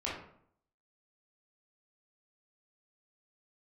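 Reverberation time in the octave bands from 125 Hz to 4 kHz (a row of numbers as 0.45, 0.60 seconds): 0.70, 0.70, 0.65, 0.60, 0.50, 0.40 seconds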